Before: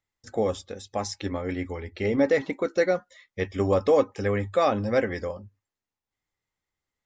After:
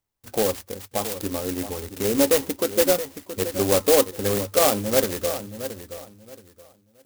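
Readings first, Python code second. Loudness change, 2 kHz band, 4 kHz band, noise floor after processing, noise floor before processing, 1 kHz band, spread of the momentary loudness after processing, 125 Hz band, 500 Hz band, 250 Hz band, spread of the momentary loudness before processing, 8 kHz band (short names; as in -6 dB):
+3.5 dB, +0.5 dB, +11.5 dB, -62 dBFS, under -85 dBFS, +1.5 dB, 14 LU, -1.0 dB, +2.5 dB, +2.0 dB, 12 LU, n/a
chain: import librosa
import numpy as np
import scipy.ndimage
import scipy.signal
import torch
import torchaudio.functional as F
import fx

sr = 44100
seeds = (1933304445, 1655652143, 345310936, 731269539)

y = fx.echo_feedback(x, sr, ms=674, feedback_pct=24, wet_db=-12.0)
y = fx.dynamic_eq(y, sr, hz=110.0, q=0.76, threshold_db=-40.0, ratio=4.0, max_db=-6)
y = fx.clock_jitter(y, sr, seeds[0], jitter_ms=0.14)
y = y * 10.0 ** (3.5 / 20.0)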